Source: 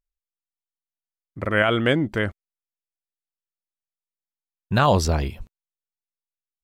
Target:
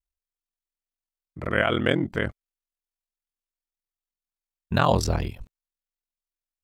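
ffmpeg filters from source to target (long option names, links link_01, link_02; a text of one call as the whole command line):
ffmpeg -i in.wav -af "aeval=exprs='val(0)*sin(2*PI*21*n/s)':channel_layout=same" out.wav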